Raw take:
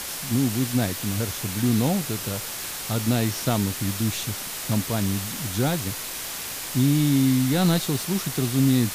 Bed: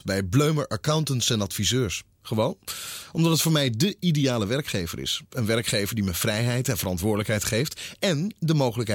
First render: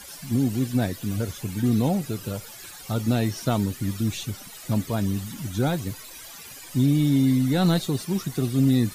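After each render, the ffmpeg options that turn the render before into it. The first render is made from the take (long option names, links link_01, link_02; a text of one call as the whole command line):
ffmpeg -i in.wav -af "afftdn=noise_reduction=15:noise_floor=-33" out.wav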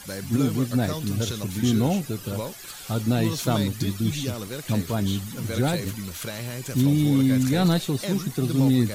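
ffmpeg -i in.wav -i bed.wav -filter_complex "[1:a]volume=-9dB[link_01];[0:a][link_01]amix=inputs=2:normalize=0" out.wav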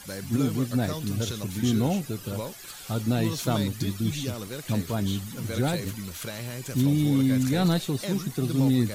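ffmpeg -i in.wav -af "volume=-2.5dB" out.wav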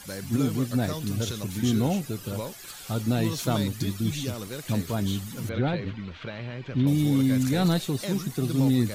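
ffmpeg -i in.wav -filter_complex "[0:a]asettb=1/sr,asplit=3[link_01][link_02][link_03];[link_01]atrim=end=5.494[link_04];[link_02]atrim=start=5.49:end=6.87,asetpts=PTS-STARTPTS,afade=type=in:duration=0.004:curve=qsin,afade=type=out:start_time=1.376:duration=0.004:curve=qsin,lowpass=frequency=3400:width=0.5412,lowpass=frequency=3400:width=1.3066[link_05];[link_03]atrim=start=6.866[link_06];[link_04][link_05]acrossfade=duration=0.004:curve1=hsin:curve2=qsin[link_07];[link_07][link_06]acrossfade=duration=0.004:curve1=qsin:curve2=hsin" out.wav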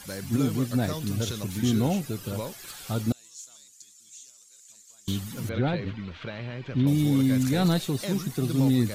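ffmpeg -i in.wav -filter_complex "[0:a]asettb=1/sr,asplit=3[link_01][link_02][link_03];[link_01]atrim=end=3.124[link_04];[link_02]atrim=start=3.12:end=5.08,asetpts=PTS-STARTPTS,afade=type=in:duration=0.004:curve=qsin,afade=type=out:start_time=1.956:duration=0.004:curve=qsin,bandpass=frequency=7100:width_type=q:width=5.9[link_05];[link_03]atrim=start=5.076[link_06];[link_04][link_05]acrossfade=duration=0.004:curve1=hsin:curve2=qsin[link_07];[link_07][link_06]acrossfade=duration=0.004:curve1=qsin:curve2=hsin" out.wav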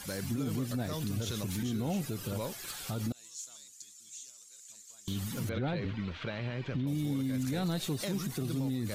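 ffmpeg -i in.wav -af "acompressor=threshold=-24dB:ratio=6,alimiter=level_in=1.5dB:limit=-24dB:level=0:latency=1:release=59,volume=-1.5dB" out.wav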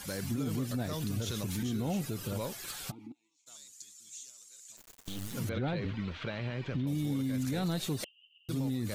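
ffmpeg -i in.wav -filter_complex "[0:a]asplit=3[link_01][link_02][link_03];[link_01]afade=type=out:start_time=2.9:duration=0.02[link_04];[link_02]asplit=3[link_05][link_06][link_07];[link_05]bandpass=frequency=300:width_type=q:width=8,volume=0dB[link_08];[link_06]bandpass=frequency=870:width_type=q:width=8,volume=-6dB[link_09];[link_07]bandpass=frequency=2240:width_type=q:width=8,volume=-9dB[link_10];[link_08][link_09][link_10]amix=inputs=3:normalize=0,afade=type=in:start_time=2.9:duration=0.02,afade=type=out:start_time=3.46:duration=0.02[link_11];[link_03]afade=type=in:start_time=3.46:duration=0.02[link_12];[link_04][link_11][link_12]amix=inputs=3:normalize=0,asplit=3[link_13][link_14][link_15];[link_13]afade=type=out:start_time=4.76:duration=0.02[link_16];[link_14]acrusher=bits=5:dc=4:mix=0:aa=0.000001,afade=type=in:start_time=4.76:duration=0.02,afade=type=out:start_time=5.33:duration=0.02[link_17];[link_15]afade=type=in:start_time=5.33:duration=0.02[link_18];[link_16][link_17][link_18]amix=inputs=3:normalize=0,asettb=1/sr,asplit=3[link_19][link_20][link_21];[link_19]atrim=end=8.044[link_22];[link_20]atrim=start=8.04:end=8.49,asetpts=PTS-STARTPTS,afade=type=in:duration=0.004:curve=qsin,afade=type=out:start_time=0.446:duration=0.004:curve=qsin,asuperpass=centerf=2900:order=8:qfactor=7.8[link_23];[link_21]atrim=start=8.486[link_24];[link_22][link_23]acrossfade=duration=0.004:curve1=hsin:curve2=qsin[link_25];[link_25][link_24]acrossfade=duration=0.004:curve1=qsin:curve2=hsin" out.wav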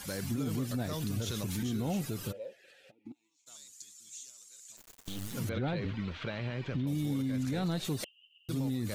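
ffmpeg -i in.wav -filter_complex "[0:a]asplit=3[link_01][link_02][link_03];[link_01]afade=type=out:start_time=2.31:duration=0.02[link_04];[link_02]asplit=3[link_05][link_06][link_07];[link_05]bandpass=frequency=530:width_type=q:width=8,volume=0dB[link_08];[link_06]bandpass=frequency=1840:width_type=q:width=8,volume=-6dB[link_09];[link_07]bandpass=frequency=2480:width_type=q:width=8,volume=-9dB[link_10];[link_08][link_09][link_10]amix=inputs=3:normalize=0,afade=type=in:start_time=2.31:duration=0.02,afade=type=out:start_time=3.05:duration=0.02[link_11];[link_03]afade=type=in:start_time=3.05:duration=0.02[link_12];[link_04][link_11][link_12]amix=inputs=3:normalize=0,asettb=1/sr,asplit=3[link_13][link_14][link_15];[link_13]atrim=end=7.224[link_16];[link_14]atrim=start=7.22:end=7.85,asetpts=PTS-STARTPTS,afade=type=in:duration=0.004:curve=qsin,afade=type=out:start_time=0.626:duration=0.004:curve=qsin,highshelf=frequency=8300:gain=-10.5[link_17];[link_15]atrim=start=7.846[link_18];[link_16][link_17]acrossfade=duration=0.004:curve1=hsin:curve2=qsin[link_19];[link_19][link_18]acrossfade=duration=0.004:curve1=qsin:curve2=hsin" out.wav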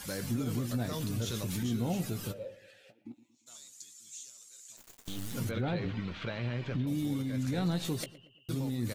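ffmpeg -i in.wav -filter_complex "[0:a]asplit=2[link_01][link_02];[link_02]adelay=17,volume=-10dB[link_03];[link_01][link_03]amix=inputs=2:normalize=0,asplit=2[link_04][link_05];[link_05]adelay=116,lowpass=frequency=2200:poles=1,volume=-16dB,asplit=2[link_06][link_07];[link_07]adelay=116,lowpass=frequency=2200:poles=1,volume=0.43,asplit=2[link_08][link_09];[link_09]adelay=116,lowpass=frequency=2200:poles=1,volume=0.43,asplit=2[link_10][link_11];[link_11]adelay=116,lowpass=frequency=2200:poles=1,volume=0.43[link_12];[link_04][link_06][link_08][link_10][link_12]amix=inputs=5:normalize=0" out.wav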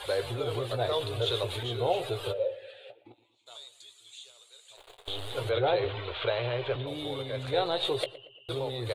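ffmpeg -i in.wav -af "firequalizer=gain_entry='entry(120,0);entry(190,-26);entry(400,12);entry(610,13);entry(1800,3);entry(3700,13);entry(5500,-15);entry(9000,-3);entry(15000,-17)':delay=0.05:min_phase=1" out.wav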